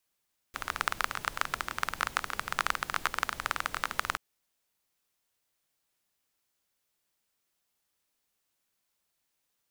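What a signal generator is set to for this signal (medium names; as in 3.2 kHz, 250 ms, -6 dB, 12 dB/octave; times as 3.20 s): rain from filtered ticks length 3.63 s, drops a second 19, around 1.3 kHz, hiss -12.5 dB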